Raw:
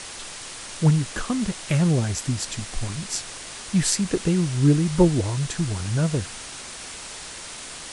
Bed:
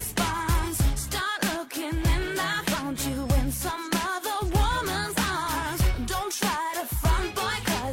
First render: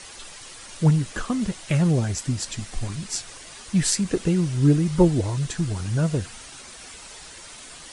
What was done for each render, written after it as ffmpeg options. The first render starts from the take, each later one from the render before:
ffmpeg -i in.wav -af "afftdn=noise_reduction=8:noise_floor=-38" out.wav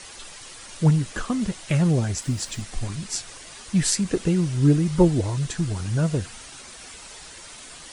ffmpeg -i in.wav -filter_complex "[0:a]asettb=1/sr,asplit=3[link_01][link_02][link_03];[link_01]atrim=end=2.224[link_04];[link_02]atrim=start=2.22:end=2.62,asetpts=PTS-STARTPTS,afade=type=in:duration=0.004:curve=qsin,afade=type=out:start_time=0.396:duration=0.004:curve=qsin,acrusher=bits=9:dc=4:mix=0:aa=0.000001[link_05];[link_03]atrim=start=2.616[link_06];[link_04][link_05]acrossfade=duration=0.004:curve1=hsin:curve2=qsin[link_07];[link_07][link_06]acrossfade=duration=0.004:curve1=qsin:curve2=hsin" out.wav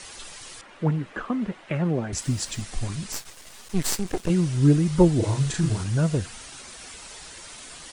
ffmpeg -i in.wav -filter_complex "[0:a]asettb=1/sr,asplit=3[link_01][link_02][link_03];[link_01]atrim=end=0.614[link_04];[link_02]atrim=start=0.61:end=2.13,asetpts=PTS-STARTPTS,afade=type=in:duration=0.004:curve=qsin,afade=type=out:start_time=1.516:duration=0.004:curve=qsin,acrossover=split=180 2700:gain=0.2 1 0.0708[link_05][link_06][link_07];[link_05][link_06][link_07]amix=inputs=3:normalize=0[link_08];[link_03]atrim=start=2.126[link_09];[link_04][link_08]acrossfade=duration=0.004:curve1=hsin:curve2=qsin[link_10];[link_10][link_09]acrossfade=duration=0.004:curve1=qsin:curve2=hsin,asettb=1/sr,asplit=3[link_11][link_12][link_13];[link_11]atrim=end=3.124[link_14];[link_12]atrim=start=3.12:end=4.3,asetpts=PTS-STARTPTS,afade=type=in:duration=0.004:curve=qsin,afade=type=out:start_time=1.176:duration=0.004:curve=qsin,aeval=exprs='max(val(0),0)':channel_layout=same[link_15];[link_13]atrim=start=4.296[link_16];[link_14][link_15]acrossfade=duration=0.004:curve1=hsin:curve2=qsin[link_17];[link_17][link_16]acrossfade=duration=0.004:curve1=qsin:curve2=hsin,asplit=3[link_18][link_19][link_20];[link_18]afade=type=out:start_time=5.21:duration=0.02[link_21];[link_19]asplit=2[link_22][link_23];[link_23]adelay=37,volume=-2dB[link_24];[link_22][link_24]amix=inputs=2:normalize=0,afade=type=in:start_time=5.21:duration=0.02,afade=type=out:start_time=5.83:duration=0.02[link_25];[link_20]afade=type=in:start_time=5.83:duration=0.02[link_26];[link_21][link_25][link_26]amix=inputs=3:normalize=0" out.wav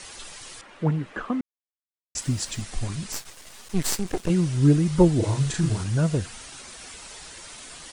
ffmpeg -i in.wav -filter_complex "[0:a]asplit=3[link_01][link_02][link_03];[link_01]atrim=end=1.41,asetpts=PTS-STARTPTS,afade=type=out:start_time=1.406:duration=0.004:curve=hsin[link_04];[link_02]atrim=start=1.41:end=2.15,asetpts=PTS-STARTPTS,volume=0[link_05];[link_03]atrim=start=2.15,asetpts=PTS-STARTPTS,afade=type=in:duration=0.004:curve=hsin[link_06];[link_04][link_05][link_06]concat=n=3:v=0:a=1" out.wav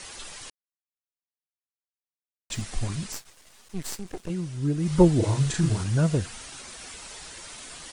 ffmpeg -i in.wav -filter_complex "[0:a]asplit=5[link_01][link_02][link_03][link_04][link_05];[link_01]atrim=end=0.5,asetpts=PTS-STARTPTS,afade=type=out:start_time=0.496:duration=0.004:curve=hsin[link_06];[link_02]atrim=start=0.5:end=2.5,asetpts=PTS-STARTPTS,volume=0[link_07];[link_03]atrim=start=2.5:end=3.22,asetpts=PTS-STARTPTS,afade=type=in:duration=0.004:curve=hsin,afade=type=out:start_time=0.55:duration=0.17:silence=0.354813[link_08];[link_04]atrim=start=3.22:end=4.76,asetpts=PTS-STARTPTS,volume=-9dB[link_09];[link_05]atrim=start=4.76,asetpts=PTS-STARTPTS,afade=type=in:duration=0.17:silence=0.354813[link_10];[link_06][link_07][link_08][link_09][link_10]concat=n=5:v=0:a=1" out.wav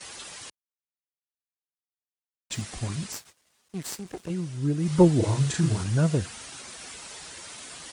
ffmpeg -i in.wav -af "agate=range=-13dB:threshold=-48dB:ratio=16:detection=peak,highpass=73" out.wav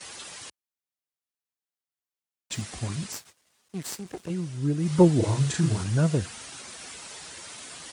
ffmpeg -i in.wav -af "highpass=57" out.wav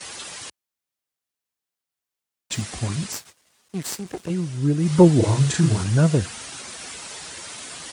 ffmpeg -i in.wav -af "volume=5.5dB,alimiter=limit=-2dB:level=0:latency=1" out.wav

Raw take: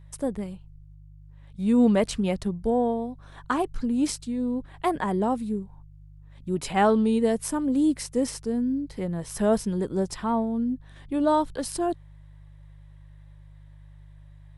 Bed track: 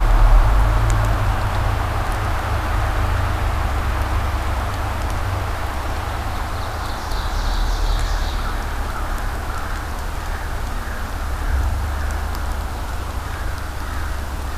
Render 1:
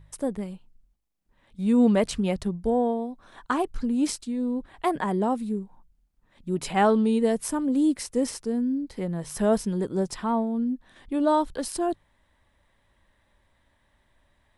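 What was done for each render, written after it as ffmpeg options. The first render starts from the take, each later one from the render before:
ffmpeg -i in.wav -af "bandreject=frequency=50:width_type=h:width=4,bandreject=frequency=100:width_type=h:width=4,bandreject=frequency=150:width_type=h:width=4" out.wav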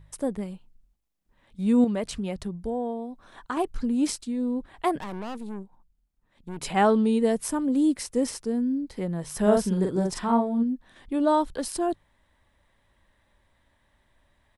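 ffmpeg -i in.wav -filter_complex "[0:a]asettb=1/sr,asplit=3[link_01][link_02][link_03];[link_01]atrim=end=1.844[link_04];[link_02]atrim=start=1.84:end=3.57,asetpts=PTS-STARTPTS,afade=type=in:duration=0.004:curve=qsin,afade=type=out:start_time=1.726:duration=0.004:curve=qsin,acompressor=threshold=-36dB:ratio=1.5:attack=3.2:release=140:knee=1:detection=peak[link_05];[link_03]atrim=start=3.566[link_06];[link_04][link_05]acrossfade=duration=0.004:curve1=hsin:curve2=qsin[link_07];[link_07][link_06]acrossfade=duration=0.004:curve1=qsin:curve2=hsin,asettb=1/sr,asplit=3[link_08][link_09][link_10];[link_08]atrim=end=4.994[link_11];[link_09]atrim=start=4.99:end=6.61,asetpts=PTS-STARTPTS,afade=type=in:duration=0.004:curve=qsin,afade=type=out:start_time=1.616:duration=0.004:curve=qsin,aeval=exprs='(tanh(44.7*val(0)+0.8)-tanh(0.8))/44.7':channel_layout=same[link_12];[link_10]atrim=start=6.606[link_13];[link_11][link_12]acrossfade=duration=0.004:curve1=hsin:curve2=qsin[link_14];[link_14][link_13]acrossfade=duration=0.004:curve1=qsin:curve2=hsin,asplit=3[link_15][link_16][link_17];[link_15]afade=type=out:start_time=9.45:duration=0.02[link_18];[link_16]asplit=2[link_19][link_20];[link_20]adelay=43,volume=-2.5dB[link_21];[link_19][link_21]amix=inputs=2:normalize=0,afade=type=in:start_time=9.45:duration=0.02,afade=type=out:start_time=10.62:duration=0.02[link_22];[link_17]afade=type=in:start_time=10.62:duration=0.02[link_23];[link_18][link_22][link_23]amix=inputs=3:normalize=0" out.wav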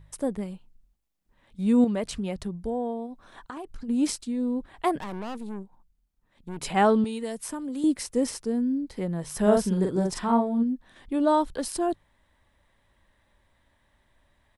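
ffmpeg -i in.wav -filter_complex "[0:a]asplit=3[link_01][link_02][link_03];[link_01]afade=type=out:start_time=3.06:duration=0.02[link_04];[link_02]acompressor=threshold=-34dB:ratio=8:attack=3.2:release=140:knee=1:detection=peak,afade=type=in:start_time=3.06:duration=0.02,afade=type=out:start_time=3.88:duration=0.02[link_05];[link_03]afade=type=in:start_time=3.88:duration=0.02[link_06];[link_04][link_05][link_06]amix=inputs=3:normalize=0,asettb=1/sr,asplit=3[link_07][link_08][link_09];[link_07]atrim=end=7.044[link_10];[link_08]atrim=start=7.04:end=7.84,asetpts=PTS-STARTPTS,afade=type=in:duration=0.004:curve=qsin,afade=type=out:start_time=0.796:duration=0.004:curve=qsin,acrossover=split=130|840|3900[link_11][link_12][link_13][link_14];[link_11]acompressor=threshold=-57dB:ratio=3[link_15];[link_12]acompressor=threshold=-35dB:ratio=3[link_16];[link_13]acompressor=threshold=-43dB:ratio=3[link_17];[link_14]acompressor=threshold=-36dB:ratio=3[link_18];[link_15][link_16][link_17][link_18]amix=inputs=4:normalize=0[link_19];[link_09]atrim=start=7.836[link_20];[link_10][link_19]acrossfade=duration=0.004:curve1=hsin:curve2=qsin[link_21];[link_21][link_20]acrossfade=duration=0.004:curve1=qsin:curve2=hsin" out.wav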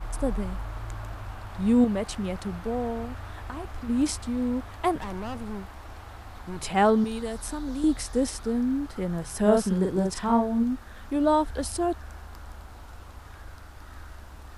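ffmpeg -i in.wav -i bed.wav -filter_complex "[1:a]volume=-19dB[link_01];[0:a][link_01]amix=inputs=2:normalize=0" out.wav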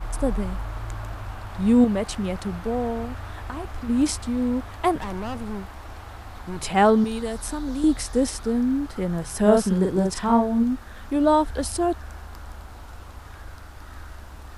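ffmpeg -i in.wav -af "volume=3.5dB" out.wav

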